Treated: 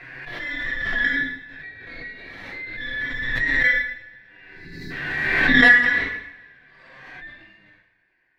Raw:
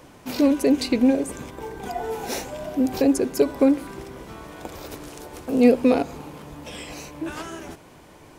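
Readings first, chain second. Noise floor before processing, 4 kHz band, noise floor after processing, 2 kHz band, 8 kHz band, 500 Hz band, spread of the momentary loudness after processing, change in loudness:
−48 dBFS, +5.0 dB, −66 dBFS, +21.0 dB, below −15 dB, −14.0 dB, 23 LU, +3.0 dB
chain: band-splitting scrambler in four parts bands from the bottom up 2143
harmonic generator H 3 −44 dB, 6 −18 dB, 7 −20 dB, 8 −15 dB, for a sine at −4 dBFS
harmonic and percussive parts rebalanced percussive −12 dB
output level in coarse steps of 15 dB
time-frequency box erased 0:04.48–0:04.90, 420–3,800 Hz
flanger 0.29 Hz, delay 7.3 ms, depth 5.9 ms, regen +44%
high-frequency loss of the air 370 metres
coupled-rooms reverb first 0.71 s, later 2 s, from −24 dB, DRR −9.5 dB
background raised ahead of every attack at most 29 dB per second
level +3.5 dB

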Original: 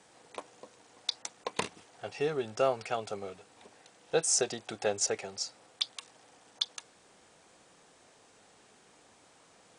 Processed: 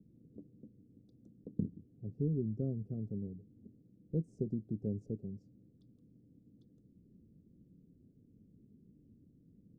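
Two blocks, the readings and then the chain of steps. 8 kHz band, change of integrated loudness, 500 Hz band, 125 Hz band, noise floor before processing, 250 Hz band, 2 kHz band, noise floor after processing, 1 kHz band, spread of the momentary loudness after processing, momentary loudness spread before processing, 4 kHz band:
below −40 dB, −6.5 dB, −12.5 dB, +10.5 dB, −62 dBFS, +5.5 dB, below −40 dB, −66 dBFS, below −35 dB, 21 LU, 19 LU, below −40 dB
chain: inverse Chebyshev low-pass filter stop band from 840 Hz, stop band 60 dB
level +10.5 dB

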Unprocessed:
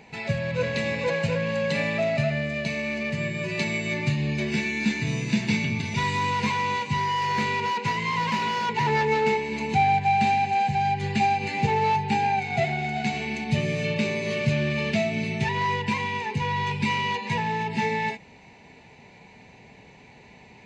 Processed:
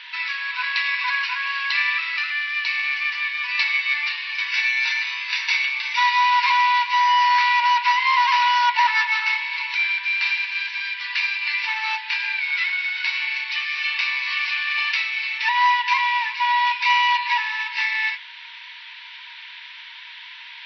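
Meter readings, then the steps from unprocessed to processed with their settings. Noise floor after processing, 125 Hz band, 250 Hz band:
−40 dBFS, below −40 dB, below −40 dB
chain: noise in a band 1,600–3,800 Hz −50 dBFS
linear-phase brick-wall band-pass 900–5,900 Hz
level +9 dB

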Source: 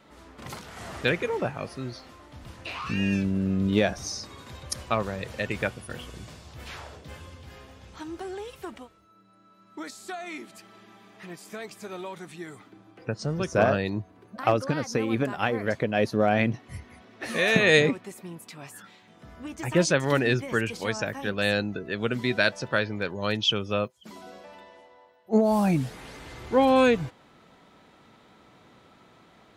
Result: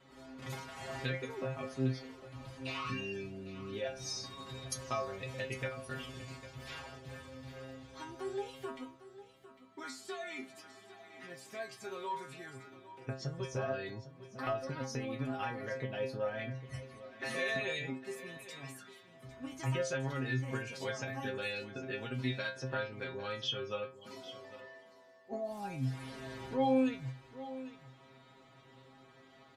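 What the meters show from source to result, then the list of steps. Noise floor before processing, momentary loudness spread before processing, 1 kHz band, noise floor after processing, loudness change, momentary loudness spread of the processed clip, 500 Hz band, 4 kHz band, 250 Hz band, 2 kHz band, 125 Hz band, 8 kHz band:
−57 dBFS, 20 LU, −11.0 dB, −60 dBFS, −13.5 dB, 16 LU, −12.0 dB, −11.5 dB, −12.5 dB, −12.5 dB, −9.0 dB, −9.5 dB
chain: high-shelf EQ 10,000 Hz −9 dB
downward compressor 6 to 1, threshold −30 dBFS, peak gain reduction 15 dB
stiff-string resonator 130 Hz, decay 0.37 s, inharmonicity 0.002
on a send: single-tap delay 803 ms −15 dB
on the sum: level +8 dB

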